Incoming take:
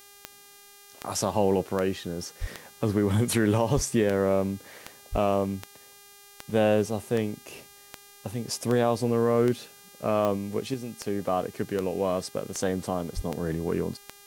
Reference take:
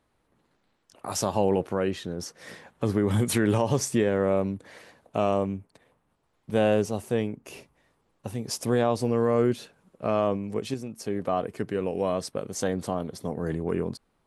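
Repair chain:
click removal
hum removal 403.6 Hz, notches 39
high-pass at the plosives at 0:02.40/0:03.75/0:05.11/0:13.15

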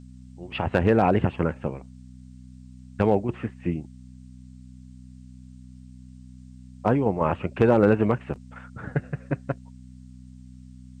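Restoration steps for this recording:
clipped peaks rebuilt −8.5 dBFS
hum removal 63.1 Hz, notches 4
downward expander −38 dBFS, range −21 dB

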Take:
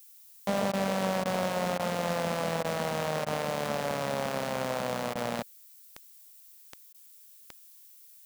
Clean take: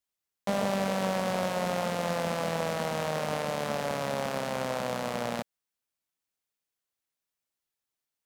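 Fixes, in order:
click removal
repair the gap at 0:00.72/0:01.24/0:01.78/0:02.63/0:03.25/0:05.14/0:06.93, 13 ms
broadband denoise 30 dB, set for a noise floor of −54 dBFS

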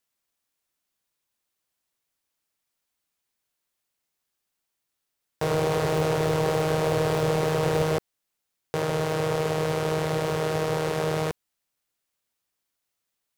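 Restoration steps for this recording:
clipped peaks rebuilt −15.5 dBFS

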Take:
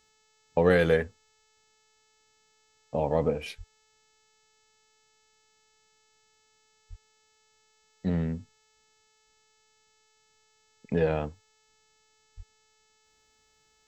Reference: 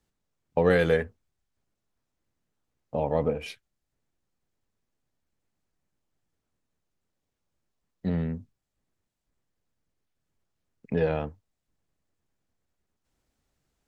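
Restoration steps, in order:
hum removal 435 Hz, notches 18
0:03.57–0:03.69: high-pass filter 140 Hz 24 dB per octave
0:06.89–0:07.01: high-pass filter 140 Hz 24 dB per octave
0:12.36–0:12.48: high-pass filter 140 Hz 24 dB per octave

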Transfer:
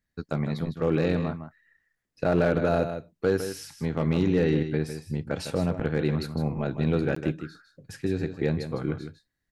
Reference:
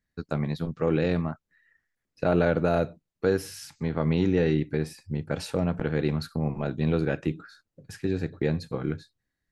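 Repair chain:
clipped peaks rebuilt −14.5 dBFS
repair the gap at 0:07.15, 14 ms
echo removal 156 ms −9.5 dB

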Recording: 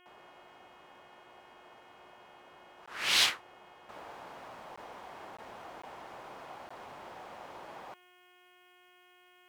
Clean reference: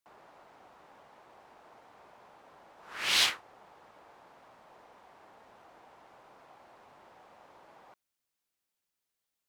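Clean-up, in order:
hum removal 360.5 Hz, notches 9
repair the gap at 0:02.86/0:04.76/0:05.37/0:05.82/0:06.69, 15 ms
level 0 dB, from 0:03.89 −9.5 dB

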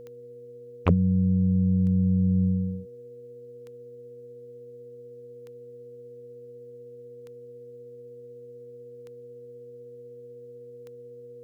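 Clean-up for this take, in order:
clipped peaks rebuilt −9 dBFS
click removal
hum removal 124 Hz, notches 4
notch filter 480 Hz, Q 30

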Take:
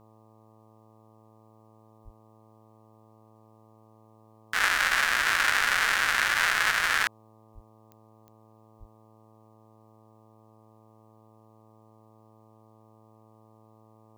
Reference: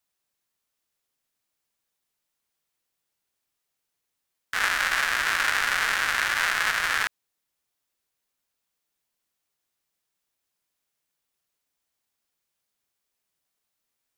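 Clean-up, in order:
click removal
hum removal 109.8 Hz, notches 11
0:02.04–0:02.16: high-pass filter 140 Hz 24 dB per octave
0:07.54–0:07.66: high-pass filter 140 Hz 24 dB per octave
0:08.79–0:08.91: high-pass filter 140 Hz 24 dB per octave

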